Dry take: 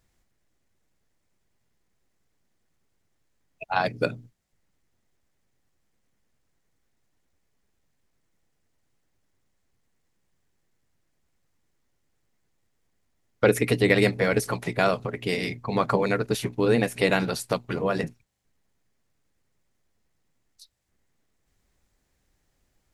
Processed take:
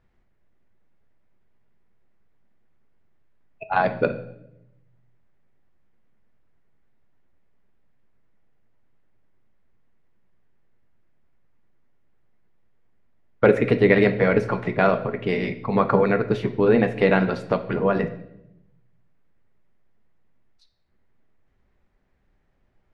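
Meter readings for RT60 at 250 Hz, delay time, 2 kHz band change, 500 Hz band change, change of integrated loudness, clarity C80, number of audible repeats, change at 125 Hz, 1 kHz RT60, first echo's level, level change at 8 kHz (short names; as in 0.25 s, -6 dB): 1.2 s, none, +2.0 dB, +4.5 dB, +3.5 dB, 16.0 dB, none, +3.0 dB, 0.70 s, none, under -15 dB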